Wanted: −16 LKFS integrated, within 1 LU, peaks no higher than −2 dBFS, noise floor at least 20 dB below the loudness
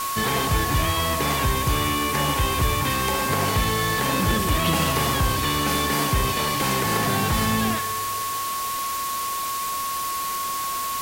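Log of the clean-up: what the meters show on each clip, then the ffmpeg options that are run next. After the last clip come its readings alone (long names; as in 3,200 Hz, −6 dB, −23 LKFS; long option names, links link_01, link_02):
interfering tone 1,100 Hz; level of the tone −26 dBFS; background noise floor −27 dBFS; target noise floor −43 dBFS; integrated loudness −22.5 LKFS; sample peak −9.0 dBFS; target loudness −16.0 LKFS
→ -af "bandreject=frequency=1100:width=30"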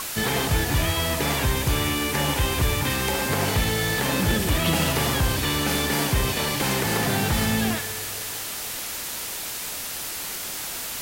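interfering tone none found; background noise floor −32 dBFS; target noise floor −44 dBFS
→ -af "afftdn=noise_reduction=12:noise_floor=-32"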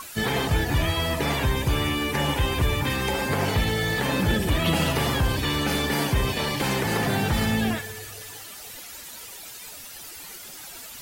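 background noise floor −41 dBFS; target noise floor −44 dBFS
→ -af "afftdn=noise_reduction=6:noise_floor=-41"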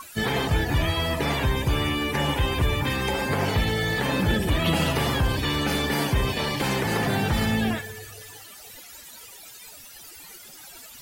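background noise floor −45 dBFS; integrated loudness −24.5 LKFS; sample peak −11.0 dBFS; target loudness −16.0 LKFS
→ -af "volume=8.5dB"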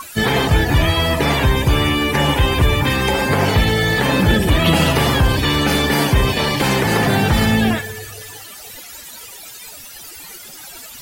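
integrated loudness −16.0 LKFS; sample peak −2.5 dBFS; background noise floor −37 dBFS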